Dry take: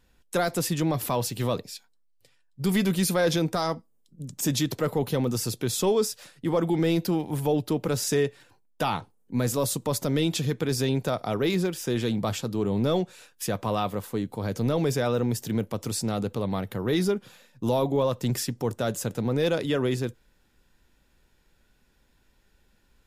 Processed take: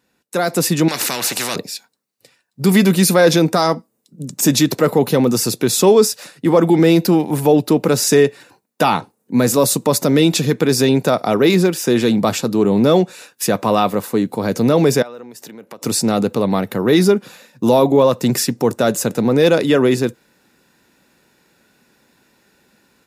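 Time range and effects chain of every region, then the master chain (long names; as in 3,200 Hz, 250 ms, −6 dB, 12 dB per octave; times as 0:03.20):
0:00.88–0:01.56: low-pass filter 8,800 Hz + every bin compressed towards the loudest bin 4 to 1
0:15.02–0:15.82: downward compressor 8 to 1, threshold −36 dBFS + high-pass filter 720 Hz 6 dB per octave + high-shelf EQ 2,700 Hz −7.5 dB
whole clip: Chebyshev high-pass filter 200 Hz, order 2; notch filter 3,200 Hz, Q 8.9; automatic gain control gain up to 9.5 dB; level +3.5 dB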